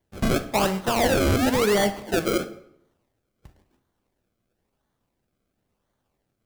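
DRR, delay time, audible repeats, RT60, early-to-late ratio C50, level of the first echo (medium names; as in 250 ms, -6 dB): 9.5 dB, no echo, no echo, 0.70 s, 14.0 dB, no echo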